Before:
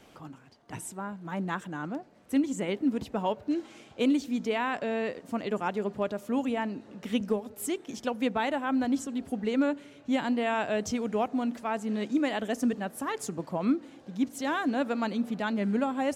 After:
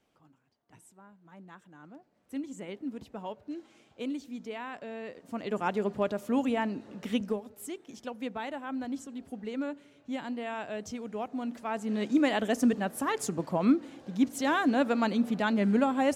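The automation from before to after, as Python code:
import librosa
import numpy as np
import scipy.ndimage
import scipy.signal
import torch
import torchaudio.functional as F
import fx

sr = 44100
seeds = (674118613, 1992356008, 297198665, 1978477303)

y = fx.gain(x, sr, db=fx.line((1.63, -18.0), (2.43, -10.0), (5.02, -10.0), (5.69, 1.0), (7.01, 1.0), (7.65, -8.0), (11.14, -8.0), (12.22, 2.5)))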